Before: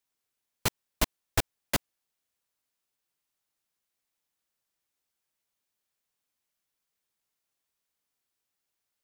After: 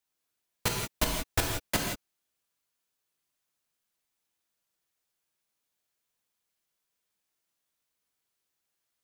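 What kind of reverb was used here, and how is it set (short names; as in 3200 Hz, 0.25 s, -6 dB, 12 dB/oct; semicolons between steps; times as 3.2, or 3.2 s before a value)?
non-linear reverb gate 0.2 s flat, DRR 0 dB; gain -1.5 dB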